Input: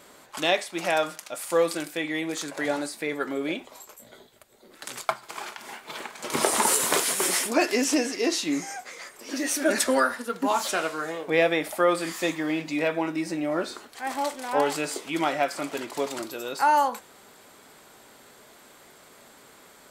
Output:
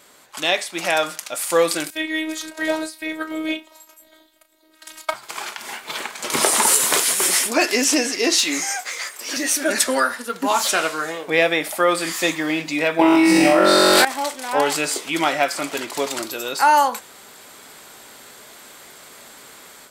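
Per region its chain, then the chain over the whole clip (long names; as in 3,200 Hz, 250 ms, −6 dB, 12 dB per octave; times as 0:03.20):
0:01.90–0:05.14: phases set to zero 316 Hz + double-tracking delay 35 ms −10.5 dB + expander for the loud parts, over −40 dBFS
0:08.38–0:09.37: high-pass filter 700 Hz 6 dB per octave + leveller curve on the samples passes 1
0:12.99–0:14.05: parametric band 6,600 Hz −7.5 dB 0.33 octaves + flutter between parallel walls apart 3.7 metres, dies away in 1.1 s + envelope flattener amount 100%
whole clip: tilt shelving filter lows −3.5 dB, about 1,300 Hz; automatic gain control gain up to 8 dB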